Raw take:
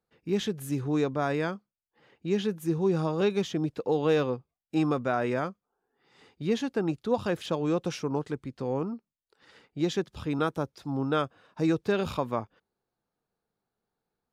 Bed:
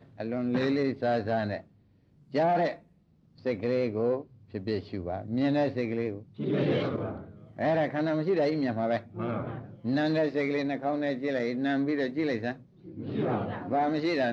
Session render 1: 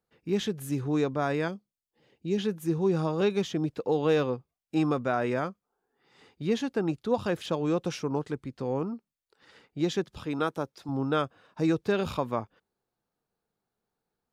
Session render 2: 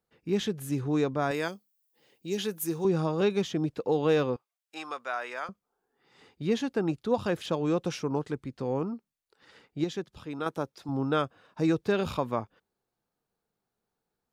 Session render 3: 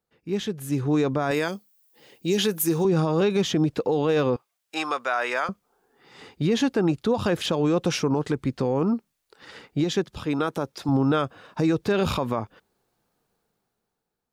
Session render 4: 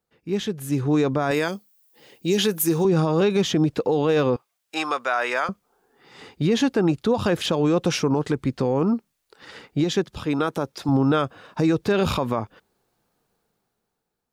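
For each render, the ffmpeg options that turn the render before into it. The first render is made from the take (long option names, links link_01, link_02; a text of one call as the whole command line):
ffmpeg -i in.wav -filter_complex "[0:a]asettb=1/sr,asplit=3[link_01][link_02][link_03];[link_01]atrim=end=1.484[link_04];[link_02]atrim=start=1.48:end=2.38,asetpts=PTS-STARTPTS,afade=type=in:duration=0.004:curve=qsin,afade=type=out:start_time=0.896:duration=0.004:curve=qsin,equalizer=frequency=1300:width_type=o:width=1.4:gain=-12.5[link_05];[link_03]atrim=start=2.376[link_06];[link_04][link_05]acrossfade=duration=0.004:curve1=hsin:curve2=qsin[link_07];[link_07][link_06]acrossfade=duration=0.004:curve1=qsin:curve2=hsin,asettb=1/sr,asplit=3[link_08][link_09][link_10];[link_08]atrim=end=10.184[link_11];[link_09]atrim=start=10.18:end=10.89,asetpts=PTS-STARTPTS,afade=type=in:duration=0.004:curve=qsin,afade=type=out:start_time=0.706:duration=0.004:curve=qsin,highpass=frequency=210:poles=1[link_12];[link_10]atrim=start=10.886[link_13];[link_11][link_12]acrossfade=duration=0.004:curve1=hsin:curve2=qsin[link_14];[link_14][link_13]acrossfade=duration=0.004:curve1=qsin:curve2=hsin" out.wav
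ffmpeg -i in.wav -filter_complex "[0:a]asettb=1/sr,asplit=3[link_01][link_02][link_03];[link_01]atrim=end=1.314[link_04];[link_02]atrim=start=1.31:end=2.85,asetpts=PTS-STARTPTS,afade=type=in:duration=0.004:curve=qsin,afade=type=out:start_time=1.536:duration=0.004:curve=qsin,aemphasis=mode=production:type=bsi[link_05];[link_03]atrim=start=2.846[link_06];[link_04][link_05]acrossfade=duration=0.004:curve1=hsin:curve2=qsin[link_07];[link_07][link_06]acrossfade=duration=0.004:curve1=qsin:curve2=hsin,asettb=1/sr,asplit=3[link_08][link_09][link_10];[link_08]atrim=end=4.364[link_11];[link_09]atrim=start=4.36:end=5.49,asetpts=PTS-STARTPTS,afade=type=in:duration=0.004:curve=qsin,afade=type=out:start_time=1.126:duration=0.004:curve=qsin,highpass=970[link_12];[link_10]atrim=start=5.486[link_13];[link_11][link_12]acrossfade=duration=0.004:curve1=hsin:curve2=qsin[link_14];[link_14][link_13]acrossfade=duration=0.004:curve1=qsin:curve2=hsin,asplit=3[link_15][link_16][link_17];[link_15]atrim=end=9.842[link_18];[link_16]atrim=start=9.838:end=10.462,asetpts=PTS-STARTPTS,volume=-5.5dB[link_19];[link_17]atrim=start=10.458[link_20];[link_18][link_19]acrossfade=duration=0.004:curve1=hsin:curve2=hsin[link_21];[link_21][link_20]acrossfade=duration=0.004:curve1=hsin:curve2=hsin" out.wav
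ffmpeg -i in.wav -af "dynaudnorm=framelen=150:gausssize=13:maxgain=13dB,alimiter=limit=-14dB:level=0:latency=1:release=83" out.wav
ffmpeg -i in.wav -af "volume=2dB" out.wav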